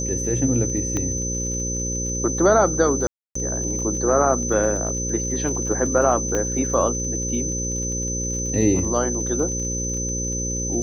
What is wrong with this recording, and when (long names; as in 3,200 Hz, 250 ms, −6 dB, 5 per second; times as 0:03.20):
mains buzz 60 Hz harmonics 9 −28 dBFS
surface crackle 38 per second −31 dBFS
whistle 6,100 Hz −26 dBFS
0:00.97: click −12 dBFS
0:03.07–0:03.35: drop-out 284 ms
0:06.35: click −11 dBFS